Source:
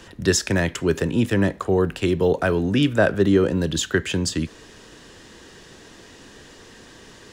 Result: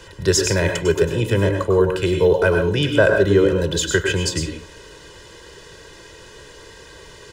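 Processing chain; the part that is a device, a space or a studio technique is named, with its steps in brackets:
microphone above a desk (comb filter 2 ms, depth 79%; convolution reverb RT60 0.30 s, pre-delay 95 ms, DRR 3.5 dB)

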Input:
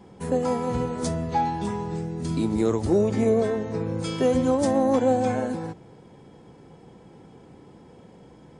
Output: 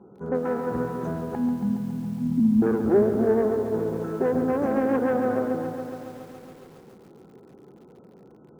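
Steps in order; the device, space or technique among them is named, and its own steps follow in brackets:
brick-wall band-stop 1,500–5,900 Hz
analogue delay pedal into a guitar amplifier (bucket-brigade delay 213 ms, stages 4,096, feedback 66%, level −18.5 dB; tube saturation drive 18 dB, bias 0.65; loudspeaker in its box 82–3,600 Hz, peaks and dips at 93 Hz −7 dB, 220 Hz +3 dB, 390 Hz +8 dB, 970 Hz −4 dB, 1,600 Hz +8 dB)
0:01.35–0:02.62: drawn EQ curve 160 Hz 0 dB, 250 Hz +13 dB, 360 Hz −28 dB, 970 Hz −16 dB, 1,800 Hz −26 dB, 8,000 Hz +4 dB
feedback echo at a low word length 139 ms, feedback 80%, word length 8 bits, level −10 dB

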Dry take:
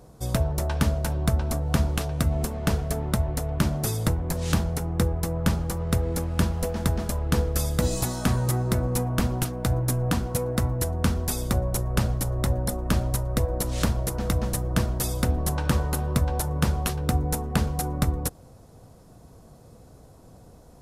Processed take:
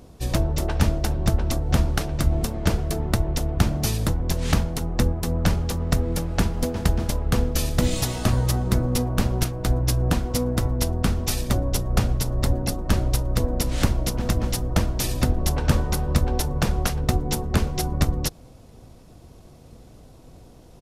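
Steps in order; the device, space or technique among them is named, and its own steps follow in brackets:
octave pedal (pitch-shifted copies added −12 semitones 0 dB)

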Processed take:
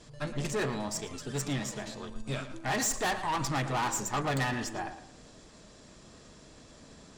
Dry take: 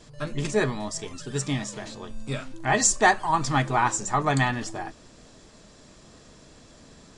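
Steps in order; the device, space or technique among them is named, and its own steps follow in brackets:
rockabilly slapback (tube saturation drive 27 dB, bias 0.55; tape delay 112 ms, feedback 34%, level −10 dB, low-pass 3,600 Hz)

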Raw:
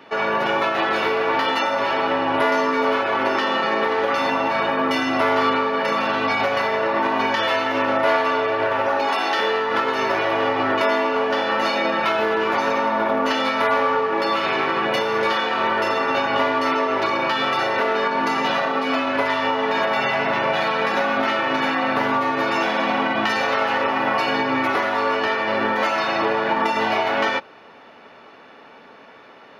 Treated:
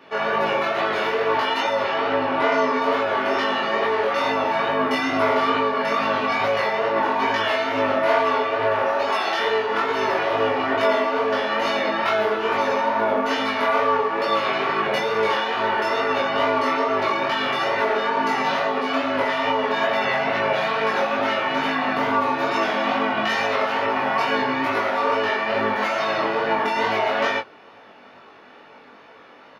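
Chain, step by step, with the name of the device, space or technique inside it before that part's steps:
double-tracked vocal (double-tracking delay 20 ms −4 dB; chorus effect 2.3 Hz, delay 18 ms, depth 6.2 ms)
0:01.84–0:02.81: low-pass filter 6,600 Hz 12 dB per octave

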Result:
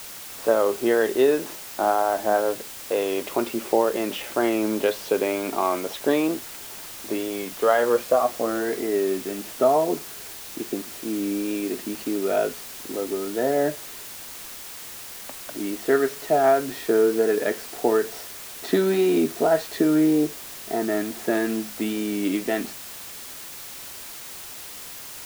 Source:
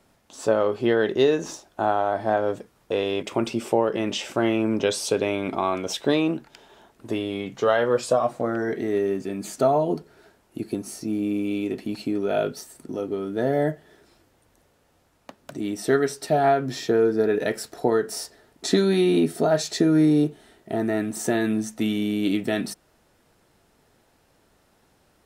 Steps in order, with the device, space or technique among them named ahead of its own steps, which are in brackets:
wax cylinder (band-pass filter 270–2,500 Hz; tape wow and flutter; white noise bed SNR 14 dB)
level +1.5 dB

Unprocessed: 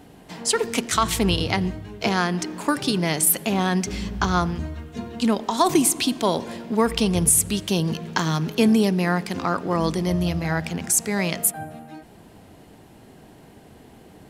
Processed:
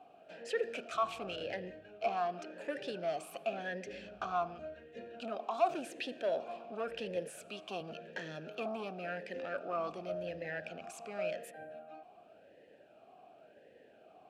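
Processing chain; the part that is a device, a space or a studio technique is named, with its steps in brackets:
0:07.16–0:07.81: high-pass filter 180 Hz 12 dB per octave
talk box (tube saturation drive 19 dB, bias 0.2; formant filter swept between two vowels a-e 0.91 Hz)
level +1.5 dB

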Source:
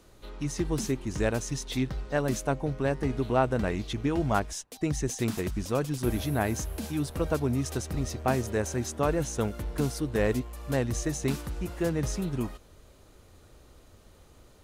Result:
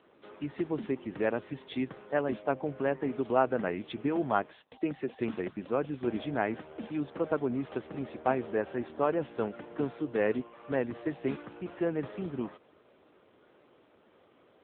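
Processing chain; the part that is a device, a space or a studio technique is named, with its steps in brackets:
0:04.70–0:05.13: high-pass filter 150 Hz 24 dB per octave
telephone (band-pass filter 260–3,300 Hz; AMR narrowband 7.95 kbit/s 8,000 Hz)

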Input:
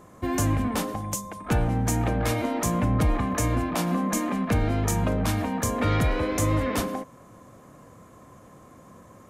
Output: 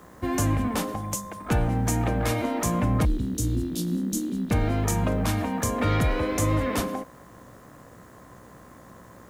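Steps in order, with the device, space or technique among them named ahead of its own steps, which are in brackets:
0:03.05–0:04.51: Chebyshev band-stop filter 370–3,600 Hz, order 3
video cassette with head-switching buzz (hum with harmonics 60 Hz, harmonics 33, −54 dBFS −2 dB per octave; white noise bed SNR 38 dB)

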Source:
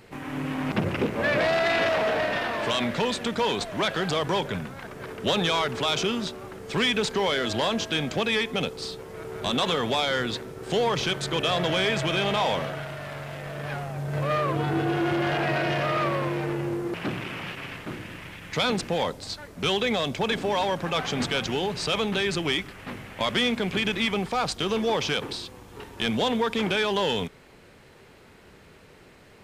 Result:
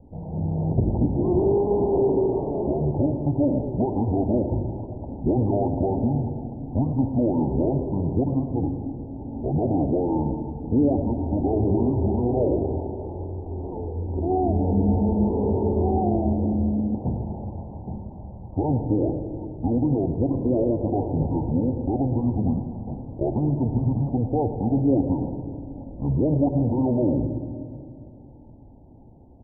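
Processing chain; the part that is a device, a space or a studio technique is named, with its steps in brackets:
dynamic equaliser 500 Hz, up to +4 dB, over −37 dBFS, Q 1
monster voice (pitch shifter −8.5 semitones; low-shelf EQ 110 Hz +8 dB; single-tap delay 109 ms −13 dB; convolution reverb RT60 2.5 s, pre-delay 58 ms, DRR 8 dB)
Butterworth low-pass 890 Hz 96 dB per octave

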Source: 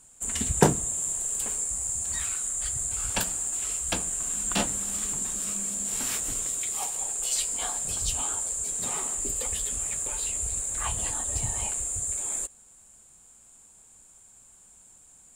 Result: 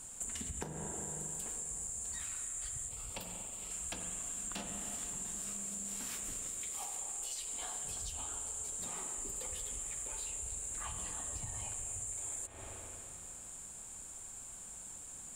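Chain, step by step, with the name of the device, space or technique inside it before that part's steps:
spring reverb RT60 2.6 s, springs 39/45 ms, chirp 65 ms, DRR 5.5 dB
serial compression, peaks first (downward compressor, threshold −38 dBFS, peak gain reduction 23.5 dB; downward compressor 3 to 1, threshold −46 dBFS, peak gain reduction 10.5 dB)
0:02.88–0:03.71: thirty-one-band graphic EQ 500 Hz +5 dB, 1,600 Hz −12 dB, 6,300 Hz −8 dB, 10,000 Hz −5 dB
level +5.5 dB

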